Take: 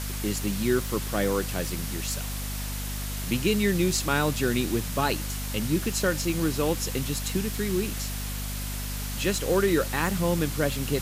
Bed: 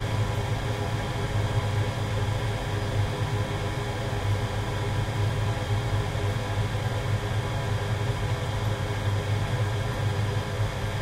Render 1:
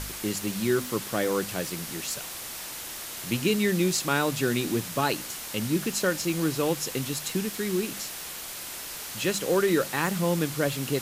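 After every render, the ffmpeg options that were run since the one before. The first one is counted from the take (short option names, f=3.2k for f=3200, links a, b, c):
-af "bandreject=f=50:t=h:w=4,bandreject=f=100:t=h:w=4,bandreject=f=150:t=h:w=4,bandreject=f=200:t=h:w=4,bandreject=f=250:t=h:w=4"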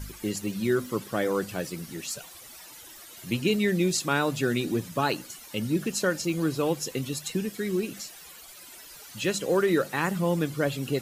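-af "afftdn=nr=14:nf=-38"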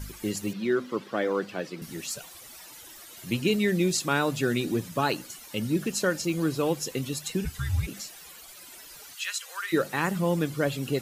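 -filter_complex "[0:a]asettb=1/sr,asplit=3[a][b][c];[a]atrim=end=0.534[d];[b]atrim=start=0.53:end=1.82,asetpts=PTS-STARTPTS,afade=t=in:d=0.004:c=qsin,afade=t=out:st=1.286:d=0.004:c=qsin,acrossover=split=170 4900:gain=0.0891 1 0.126[e][f][g];[e][f][g]amix=inputs=3:normalize=0[h];[c]atrim=start=1.816[i];[d][h]acrossfade=d=0.004:c1=hsin:c2=qsin[j];[j][i]acrossfade=d=0.004:c1=qsin:c2=hsin,asplit=3[k][l][m];[k]afade=t=out:st=7.44:d=0.02[n];[l]afreqshift=-280,afade=t=in:st=7.44:d=0.02,afade=t=out:st=7.86:d=0.02[o];[m]afade=t=in:st=7.86:d=0.02[p];[n][o][p]amix=inputs=3:normalize=0,asplit=3[q][r][s];[q]afade=t=out:st=9.13:d=0.02[t];[r]highpass=f=1.2k:w=0.5412,highpass=f=1.2k:w=1.3066,afade=t=in:st=9.13:d=0.02,afade=t=out:st=9.72:d=0.02[u];[s]afade=t=in:st=9.72:d=0.02[v];[t][u][v]amix=inputs=3:normalize=0"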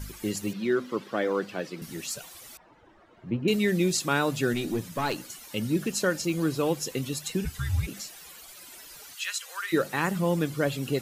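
-filter_complex "[0:a]asettb=1/sr,asplit=3[a][b][c];[a]atrim=end=2.574[d];[b]atrim=start=2.57:end=3.48,asetpts=PTS-STARTPTS,afade=t=in:d=0.004:c=qsin,afade=t=out:st=0.906:d=0.004:c=qsin,lowpass=1.1k[e];[c]atrim=start=3.476[f];[d][e]acrossfade=d=0.004:c1=hsin:c2=qsin[g];[g][f]acrossfade=d=0.004:c1=qsin:c2=hsin,asettb=1/sr,asplit=3[h][i][j];[h]atrim=end=4.534[k];[i]atrim=start=4.53:end=5.18,asetpts=PTS-STARTPTS,afade=t=in:d=0.004:c=qsin,afade=t=out:st=0.646:d=0.004:c=qsin,aeval=exprs='(tanh(8.91*val(0)+0.3)-tanh(0.3))/8.91':c=same[l];[j]atrim=start=5.176[m];[k][l]acrossfade=d=0.004:c1=hsin:c2=qsin[n];[n][m]acrossfade=d=0.004:c1=qsin:c2=hsin"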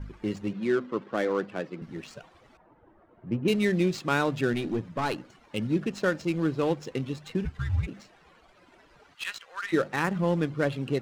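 -filter_complex "[0:a]acrossover=split=2900[a][b];[b]asoftclip=type=tanh:threshold=-28.5dB[c];[a][c]amix=inputs=2:normalize=0,adynamicsmooth=sensitivity=6:basefreq=1.3k"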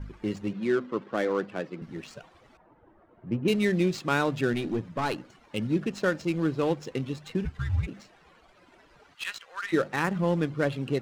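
-af anull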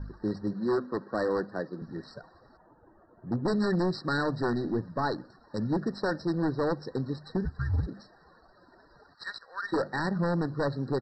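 -af "aresample=16000,aeval=exprs='0.0891*(abs(mod(val(0)/0.0891+3,4)-2)-1)':c=same,aresample=44100,afftfilt=real='re*eq(mod(floor(b*sr/1024/1900),2),0)':imag='im*eq(mod(floor(b*sr/1024/1900),2),0)':win_size=1024:overlap=0.75"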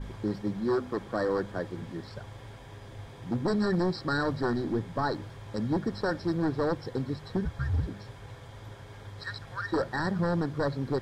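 -filter_complex "[1:a]volume=-18dB[a];[0:a][a]amix=inputs=2:normalize=0"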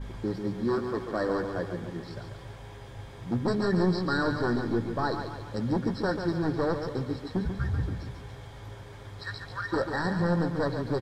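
-filter_complex "[0:a]asplit=2[a][b];[b]adelay=17,volume=-10.5dB[c];[a][c]amix=inputs=2:normalize=0,aecho=1:1:141|282|423|564|705|846:0.422|0.211|0.105|0.0527|0.0264|0.0132"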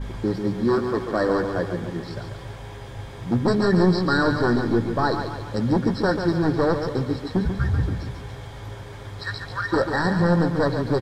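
-af "volume=7dB"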